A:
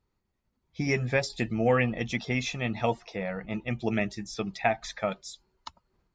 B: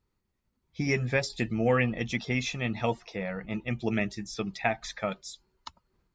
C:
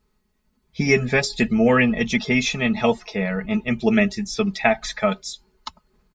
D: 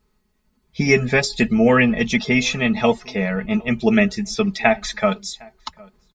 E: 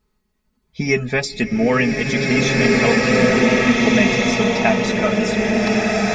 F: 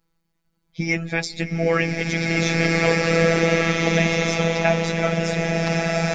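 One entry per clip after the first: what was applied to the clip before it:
bell 710 Hz -3.5 dB 0.77 oct
comb 4.7 ms, depth 68%; gain +8 dB
outdoor echo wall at 130 m, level -25 dB; gain +2 dB
bloom reverb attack 1.84 s, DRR -5 dB; gain -2.5 dB
robotiser 166 Hz; gain -1 dB

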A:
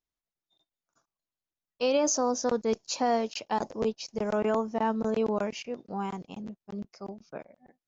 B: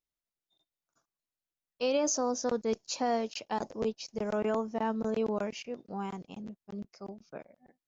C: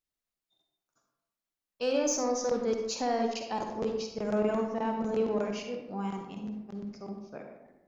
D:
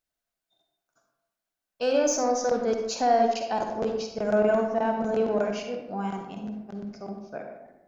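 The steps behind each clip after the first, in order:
bell 950 Hz -2 dB; gain -3 dB
soft clip -20.5 dBFS, distortion -22 dB; reverb RT60 0.90 s, pre-delay 43 ms, DRR 3 dB
small resonant body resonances 680/1500 Hz, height 9 dB, ringing for 20 ms; gain +2.5 dB

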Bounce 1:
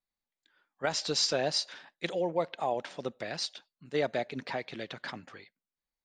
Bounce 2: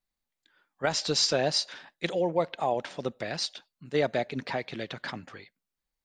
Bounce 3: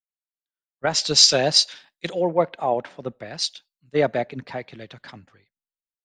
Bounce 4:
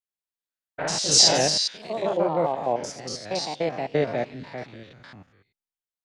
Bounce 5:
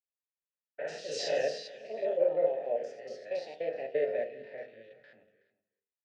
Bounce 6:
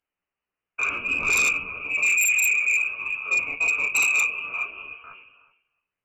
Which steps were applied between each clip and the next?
low shelf 130 Hz +6.5 dB; gain +3 dB
three-band expander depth 100%; gain +3.5 dB
stepped spectrum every 0.1 s; echoes that change speed 89 ms, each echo +2 st, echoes 2; gain -1 dB
vowel filter e; echo 0.373 s -20 dB; reverb RT60 0.45 s, pre-delay 4 ms, DRR 4.5 dB
inverted band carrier 3000 Hz; chorus voices 4, 0.59 Hz, delay 14 ms, depth 4 ms; sine folder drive 13 dB, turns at -17 dBFS

